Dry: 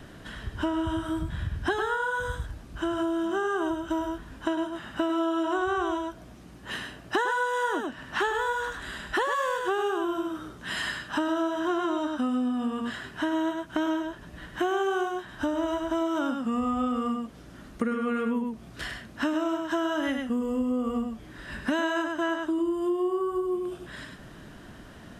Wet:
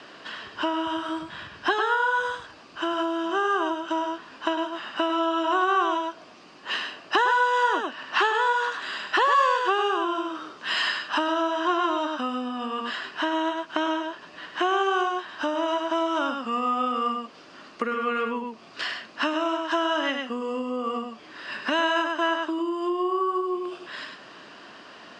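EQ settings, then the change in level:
high-frequency loss of the air 55 metres
loudspeaker in its box 410–8,100 Hz, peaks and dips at 1,100 Hz +6 dB, 2,700 Hz +8 dB, 4,700 Hz +10 dB
+4.0 dB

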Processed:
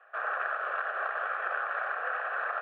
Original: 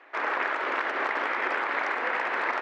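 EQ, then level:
flat-topped band-pass 1,100 Hz, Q 0.82
phaser with its sweep stopped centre 1,400 Hz, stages 8
0.0 dB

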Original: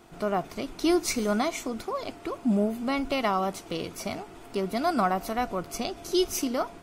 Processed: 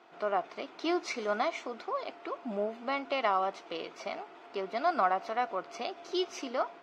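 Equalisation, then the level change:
high-pass filter 520 Hz 12 dB per octave
high-frequency loss of the air 190 metres
high-shelf EQ 11,000 Hz −8 dB
0.0 dB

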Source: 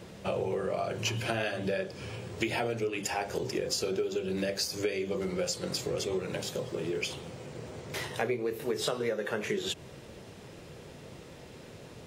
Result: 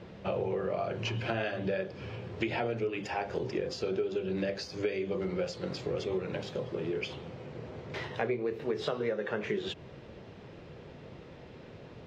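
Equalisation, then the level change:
high-frequency loss of the air 210 metres
0.0 dB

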